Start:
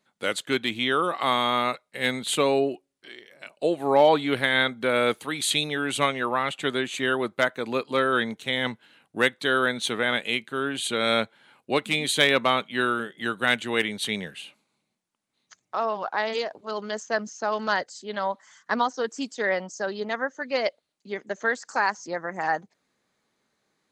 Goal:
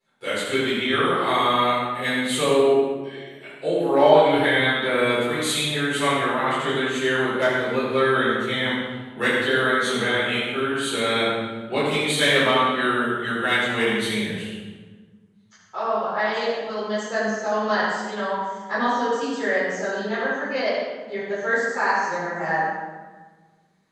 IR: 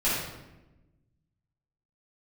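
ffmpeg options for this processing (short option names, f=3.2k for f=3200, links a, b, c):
-filter_complex "[1:a]atrim=start_sample=2205,asetrate=29547,aresample=44100[a];[0:a][a]afir=irnorm=-1:irlink=0,volume=-11.5dB"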